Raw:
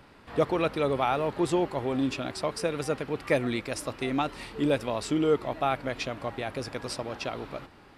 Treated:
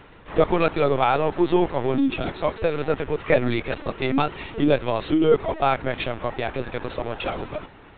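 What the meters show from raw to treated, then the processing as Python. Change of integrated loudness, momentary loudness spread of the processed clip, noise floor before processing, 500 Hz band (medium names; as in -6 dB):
+6.0 dB, 10 LU, -54 dBFS, +6.5 dB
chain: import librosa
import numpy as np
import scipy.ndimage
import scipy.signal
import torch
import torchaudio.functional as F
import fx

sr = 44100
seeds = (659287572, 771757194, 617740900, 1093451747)

y = fx.lpc_vocoder(x, sr, seeds[0], excitation='pitch_kept', order=16)
y = y * librosa.db_to_amplitude(6.5)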